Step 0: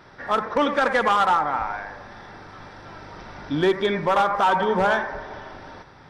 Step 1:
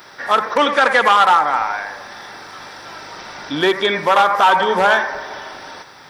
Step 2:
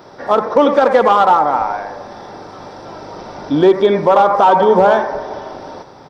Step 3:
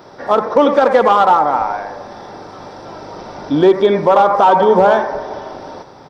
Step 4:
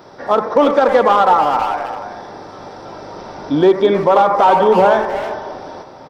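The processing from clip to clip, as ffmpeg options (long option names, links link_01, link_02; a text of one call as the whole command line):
ffmpeg -i in.wav -filter_complex "[0:a]aemphasis=mode=production:type=riaa,acrossover=split=4200[link_01][link_02];[link_02]acompressor=threshold=-45dB:ratio=4:attack=1:release=60[link_03];[link_01][link_03]amix=inputs=2:normalize=0,volume=7dB" out.wav
ffmpeg -i in.wav -af "firequalizer=gain_entry='entry(530,0);entry(1700,-18);entry(5300,-14);entry(11000,-25)':delay=0.05:min_phase=1,alimiter=level_in=10dB:limit=-1dB:release=50:level=0:latency=1,volume=-1dB" out.wav
ffmpeg -i in.wav -af anull out.wav
ffmpeg -i in.wav -filter_complex "[0:a]asplit=2[link_01][link_02];[link_02]adelay=320,highpass=300,lowpass=3400,asoftclip=type=hard:threshold=-12dB,volume=-8dB[link_03];[link_01][link_03]amix=inputs=2:normalize=0,volume=-1dB" out.wav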